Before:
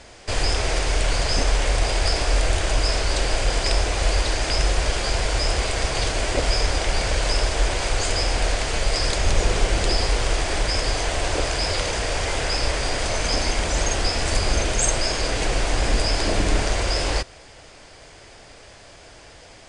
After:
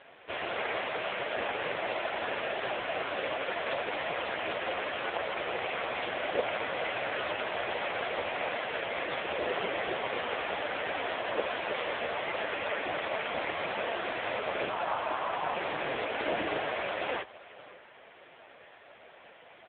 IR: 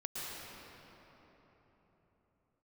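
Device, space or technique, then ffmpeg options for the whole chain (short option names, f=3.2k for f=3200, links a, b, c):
satellite phone: -filter_complex "[0:a]asettb=1/sr,asplit=3[a][b][c];[a]atrim=end=14.694[d];[b]atrim=start=14.69:end=15.55,asetpts=PTS-STARTPTS,afade=t=in:d=0.004:c=qsin,afade=t=out:st=0.856:d=0.004:c=qsin,equalizer=f=125:t=o:w=1:g=7,equalizer=f=250:t=o:w=1:g=-5,equalizer=f=500:t=o:w=1:g=-5,equalizer=f=1k:t=o:w=1:g=9,equalizer=f=2k:t=o:w=1:g=-6,equalizer=f=4k:t=o:w=1:g=-5,equalizer=f=8k:t=o:w=1:g=8[e];[c]atrim=start=15.546[f];[d][e]acrossfade=d=0.004:c1=hsin:c2=qsin[g];[g][f]acrossfade=d=0.004:c1=qsin:c2=hsin,highpass=390,lowpass=3.4k,aecho=1:1:549:0.106" -ar 8000 -c:a libopencore_amrnb -b:a 5150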